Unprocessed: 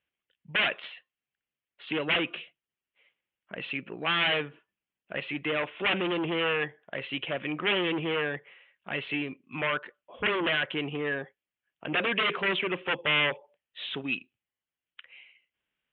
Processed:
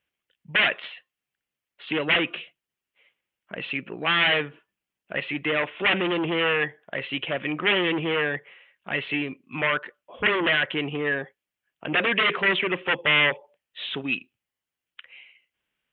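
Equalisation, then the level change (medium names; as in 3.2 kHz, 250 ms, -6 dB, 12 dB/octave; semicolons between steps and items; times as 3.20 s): dynamic bell 1.9 kHz, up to +5 dB, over -42 dBFS, Q 5.2; +4.0 dB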